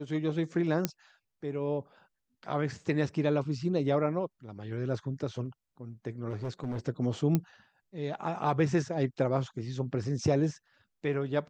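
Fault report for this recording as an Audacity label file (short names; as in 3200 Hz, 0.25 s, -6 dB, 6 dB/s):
0.850000	0.850000	pop -11 dBFS
6.290000	6.790000	clipped -30.5 dBFS
7.350000	7.350000	pop -14 dBFS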